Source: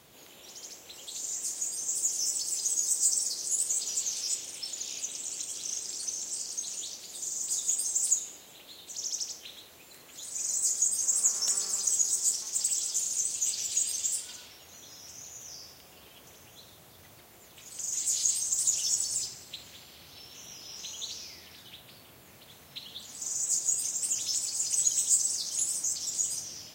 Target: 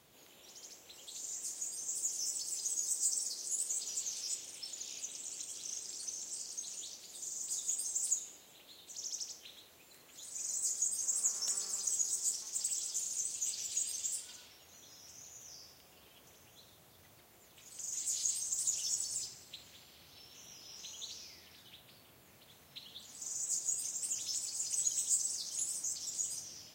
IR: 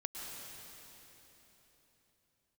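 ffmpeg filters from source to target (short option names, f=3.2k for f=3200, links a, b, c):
-filter_complex "[0:a]asettb=1/sr,asplit=3[a][b][c];[a]atrim=end=2.974[d];[b]atrim=start=2.97:end=3.73,asetpts=PTS-STARTPTS,afade=t=in:d=0.004:c=qsin,afade=t=out:st=0.756:d=0.004:c=qsin,highpass=f=150:w=0.5412,highpass=f=150:w=1.3066[e];[c]atrim=start=3.726[f];[d][e]acrossfade=d=0.004:c1=hsin:c2=qsin[g];[g][f]acrossfade=d=0.004:c1=qsin:c2=hsin,volume=-7.5dB"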